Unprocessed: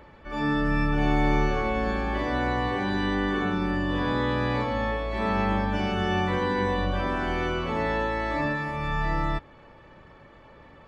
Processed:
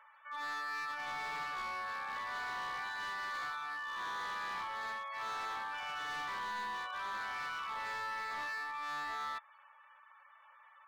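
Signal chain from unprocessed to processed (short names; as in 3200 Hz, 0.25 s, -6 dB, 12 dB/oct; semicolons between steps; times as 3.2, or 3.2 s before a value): ladder high-pass 950 Hz, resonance 45%; spectral gate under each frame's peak -20 dB strong; hard clip -37 dBFS, distortion -10 dB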